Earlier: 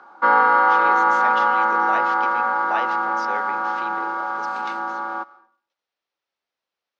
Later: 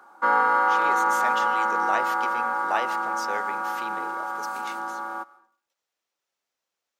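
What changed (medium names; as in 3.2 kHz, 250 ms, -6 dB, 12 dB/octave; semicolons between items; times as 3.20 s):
background -5.0 dB; master: remove low-pass 5 kHz 24 dB/octave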